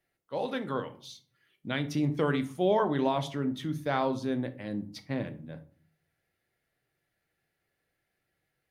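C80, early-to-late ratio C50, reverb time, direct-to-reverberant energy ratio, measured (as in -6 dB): 20.0 dB, 15.5 dB, 0.45 s, 8.5 dB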